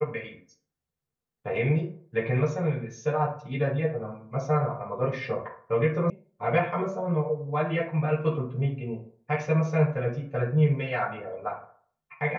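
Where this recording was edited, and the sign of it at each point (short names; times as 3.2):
6.1 sound cut off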